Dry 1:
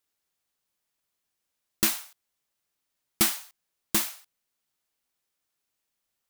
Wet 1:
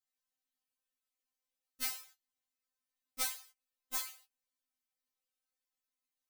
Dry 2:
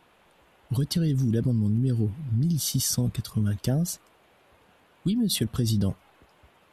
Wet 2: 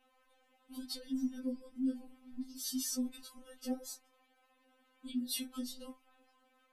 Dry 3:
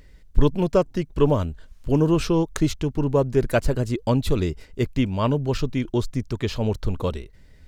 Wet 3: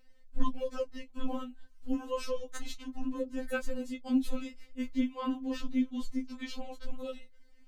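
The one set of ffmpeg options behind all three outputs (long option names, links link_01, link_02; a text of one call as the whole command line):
ffmpeg -i in.wav -af "flanger=delay=9.2:depth=8.8:regen=-42:speed=0.28:shape=sinusoidal,aeval=exprs='0.422*(cos(1*acos(clip(val(0)/0.422,-1,1)))-cos(1*PI/2))+0.00596*(cos(2*acos(clip(val(0)/0.422,-1,1)))-cos(2*PI/2))':channel_layout=same,afftfilt=real='re*3.46*eq(mod(b,12),0)':imag='im*3.46*eq(mod(b,12),0)':win_size=2048:overlap=0.75,volume=-5dB" out.wav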